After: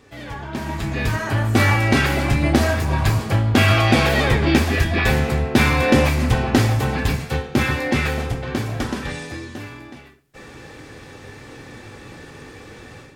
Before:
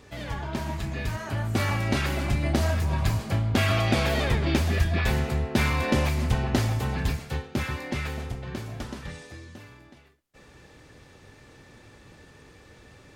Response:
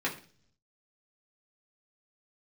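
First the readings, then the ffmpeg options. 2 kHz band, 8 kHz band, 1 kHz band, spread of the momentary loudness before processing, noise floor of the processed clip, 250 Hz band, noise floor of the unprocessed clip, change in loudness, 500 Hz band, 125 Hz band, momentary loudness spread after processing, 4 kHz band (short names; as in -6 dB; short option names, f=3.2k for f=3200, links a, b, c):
+10.0 dB, +7.0 dB, +9.0 dB, 12 LU, -42 dBFS, +9.0 dB, -53 dBFS, +8.0 dB, +8.5 dB, +6.5 dB, 14 LU, +8.0 dB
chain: -filter_complex "[0:a]dynaudnorm=f=520:g=3:m=11.5dB,asplit=2[a][b];[1:a]atrim=start_sample=2205[c];[b][c]afir=irnorm=-1:irlink=0,volume=-9.5dB[d];[a][d]amix=inputs=2:normalize=0,volume=-2.5dB"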